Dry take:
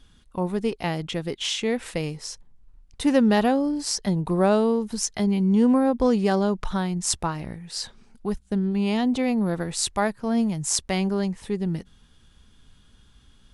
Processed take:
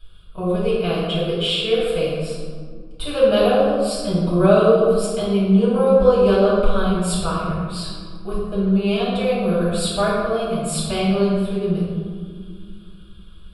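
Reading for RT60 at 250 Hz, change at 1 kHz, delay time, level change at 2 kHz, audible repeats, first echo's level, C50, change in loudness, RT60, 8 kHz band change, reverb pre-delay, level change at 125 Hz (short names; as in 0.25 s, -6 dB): 3.6 s, +4.0 dB, none, +3.5 dB, none, none, -1.5 dB, +5.0 dB, 2.1 s, -3.5 dB, 4 ms, +6.0 dB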